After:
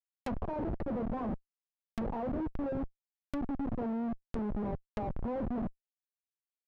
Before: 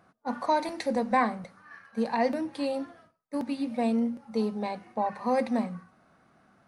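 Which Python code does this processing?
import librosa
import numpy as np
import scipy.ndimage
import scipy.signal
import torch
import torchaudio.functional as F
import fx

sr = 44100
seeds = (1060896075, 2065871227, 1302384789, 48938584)

y = fx.schmitt(x, sr, flips_db=-32.0)
y = fx.env_lowpass_down(y, sr, base_hz=810.0, full_db=-29.5)
y = y * 10.0 ** (-2.5 / 20.0)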